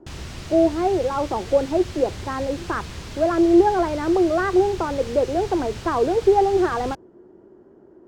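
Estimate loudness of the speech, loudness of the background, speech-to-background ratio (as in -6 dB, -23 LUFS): -21.0 LUFS, -36.0 LUFS, 15.0 dB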